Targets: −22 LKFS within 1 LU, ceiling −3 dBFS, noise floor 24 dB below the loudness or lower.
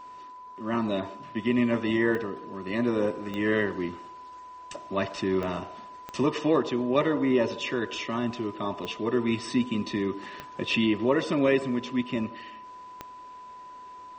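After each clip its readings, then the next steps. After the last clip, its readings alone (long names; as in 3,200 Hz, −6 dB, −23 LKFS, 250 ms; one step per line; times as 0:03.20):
number of clicks 7; interfering tone 1,000 Hz; level of the tone −42 dBFS; integrated loudness −28.0 LKFS; sample peak −11.0 dBFS; target loudness −22.0 LKFS
→ click removal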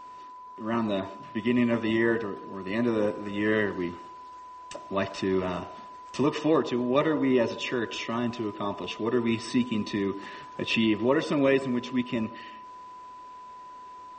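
number of clicks 0; interfering tone 1,000 Hz; level of the tone −42 dBFS
→ notch filter 1,000 Hz, Q 30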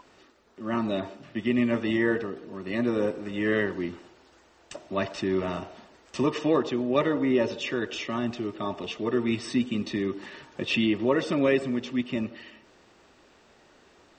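interfering tone none found; integrated loudness −28.0 LKFS; sample peak −11.5 dBFS; target loudness −22.0 LKFS
→ level +6 dB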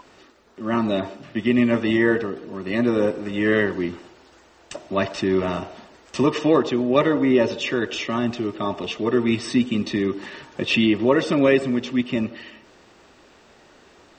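integrated loudness −22.0 LKFS; sample peak −5.5 dBFS; background noise floor −53 dBFS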